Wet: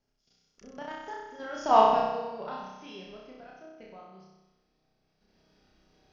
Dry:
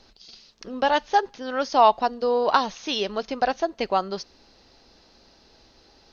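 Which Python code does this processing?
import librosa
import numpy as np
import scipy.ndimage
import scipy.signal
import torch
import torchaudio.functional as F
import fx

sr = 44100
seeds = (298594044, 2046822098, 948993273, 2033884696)

p1 = fx.recorder_agc(x, sr, target_db=-14.0, rise_db_per_s=13.0, max_gain_db=30)
p2 = fx.doppler_pass(p1, sr, speed_mps=17, closest_m=2.3, pass_at_s=1.83)
p3 = fx.graphic_eq_15(p2, sr, hz=(160, 400, 1000, 4000), db=(8, -7, -4, -12))
p4 = fx.level_steps(p3, sr, step_db=10)
p5 = fx.doubler(p4, sr, ms=38.0, db=-12)
p6 = fx.small_body(p5, sr, hz=(400.0, 3300.0), ring_ms=95, db=11)
y = p6 + fx.room_flutter(p6, sr, wall_m=5.4, rt60_s=1.1, dry=0)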